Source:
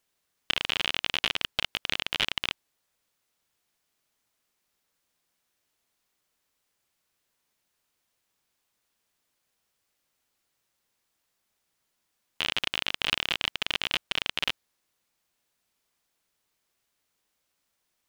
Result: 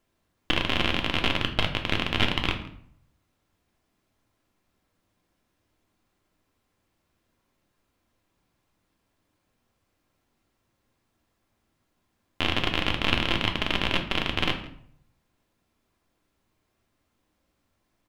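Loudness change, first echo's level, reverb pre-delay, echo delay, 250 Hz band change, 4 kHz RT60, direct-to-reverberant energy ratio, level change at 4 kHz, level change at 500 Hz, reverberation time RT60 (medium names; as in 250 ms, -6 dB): +2.5 dB, -20.5 dB, 3 ms, 164 ms, +15.0 dB, 0.45 s, 3.0 dB, +0.5 dB, +9.5 dB, 0.60 s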